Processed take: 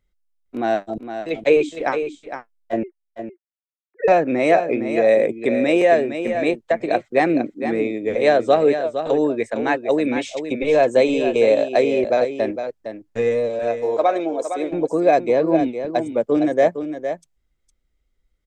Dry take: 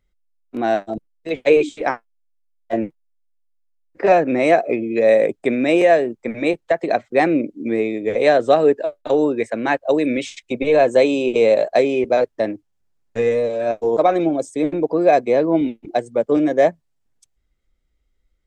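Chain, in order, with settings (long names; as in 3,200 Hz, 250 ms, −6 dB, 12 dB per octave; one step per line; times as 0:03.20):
0:02.83–0:04.08: three sine waves on the formant tracks
0:13.59–0:14.71: high-pass filter 400 Hz 12 dB per octave
single-tap delay 460 ms −9 dB
level −1.5 dB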